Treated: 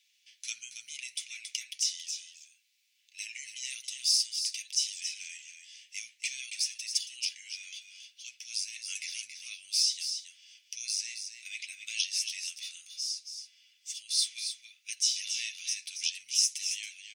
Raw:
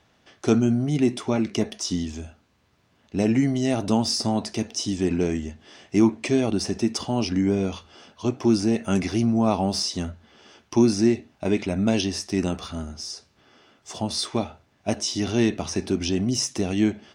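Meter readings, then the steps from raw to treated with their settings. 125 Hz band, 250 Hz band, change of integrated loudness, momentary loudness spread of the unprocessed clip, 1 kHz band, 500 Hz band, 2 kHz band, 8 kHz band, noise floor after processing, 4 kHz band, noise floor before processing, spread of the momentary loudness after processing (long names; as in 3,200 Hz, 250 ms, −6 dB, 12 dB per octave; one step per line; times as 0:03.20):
below −40 dB, below −40 dB, −8.0 dB, 12 LU, below −40 dB, below −40 dB, −4.5 dB, +2.0 dB, −70 dBFS, 0.0 dB, −64 dBFS, 16 LU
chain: elliptic high-pass filter 2,300 Hz, stop band 60 dB
high-shelf EQ 7,000 Hz +9.5 dB
comb filter 7.4 ms, depth 31%
on a send: single-tap delay 276 ms −8 dB
on the sum: level −3.5 dB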